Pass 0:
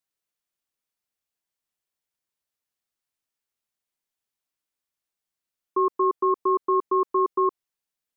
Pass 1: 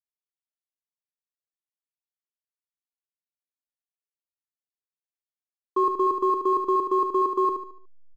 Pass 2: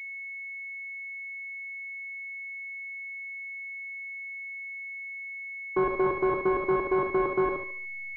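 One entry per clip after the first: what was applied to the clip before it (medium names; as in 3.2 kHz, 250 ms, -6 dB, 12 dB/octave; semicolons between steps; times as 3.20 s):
hysteresis with a dead band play -44 dBFS; on a send: feedback delay 73 ms, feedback 39%, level -6.5 dB
bit-reversed sample order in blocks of 16 samples; class-D stage that switches slowly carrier 2.2 kHz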